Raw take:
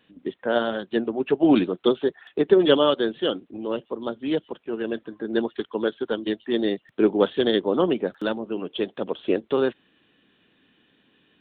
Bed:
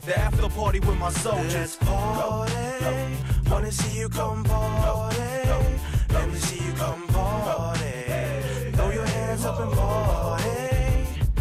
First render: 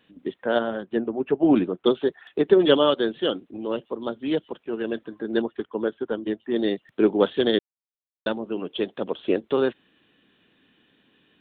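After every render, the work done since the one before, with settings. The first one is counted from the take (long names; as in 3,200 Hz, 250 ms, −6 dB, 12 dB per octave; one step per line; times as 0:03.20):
0:00.59–0:01.86: high-frequency loss of the air 460 metres
0:05.42–0:06.56: high-frequency loss of the air 470 metres
0:07.59–0:08.26: silence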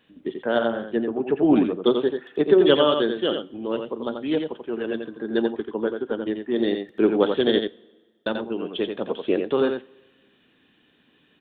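single-tap delay 87 ms −6 dB
coupled-rooms reverb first 0.3 s, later 1.6 s, from −17 dB, DRR 16 dB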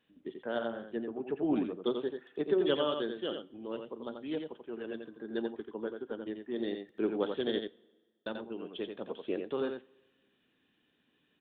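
level −12.5 dB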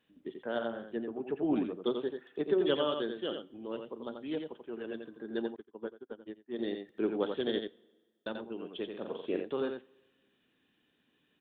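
0:05.56–0:06.59: expander for the loud parts 2.5 to 1, over −50 dBFS
0:08.89–0:09.43: double-tracking delay 44 ms −4.5 dB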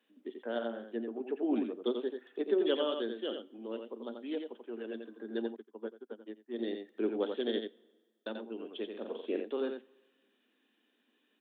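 elliptic high-pass filter 220 Hz, stop band 40 dB
dynamic equaliser 1,100 Hz, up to −4 dB, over −52 dBFS, Q 1.3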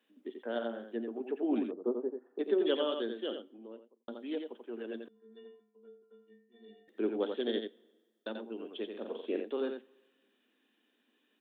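0:01.71–0:02.39: low-pass filter 1,100 Hz 24 dB per octave
0:03.23–0:04.08: fade out and dull
0:05.08–0:06.88: stiff-string resonator 210 Hz, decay 0.79 s, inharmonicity 0.03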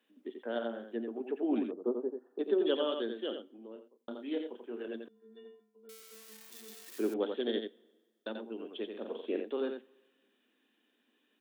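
0:02.02–0:02.84: parametric band 2,100 Hz −7 dB 0.39 octaves
0:03.73–0:04.88: double-tracking delay 29 ms −6.5 dB
0:05.89–0:07.14: spike at every zero crossing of −36.5 dBFS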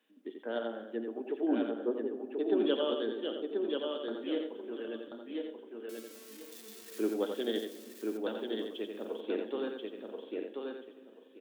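repeating echo 1,034 ms, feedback 19%, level −4 dB
rectangular room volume 3,100 cubic metres, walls mixed, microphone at 0.56 metres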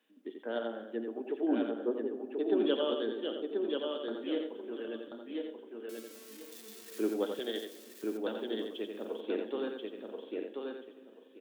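0:07.39–0:08.04: high-pass filter 470 Hz 6 dB per octave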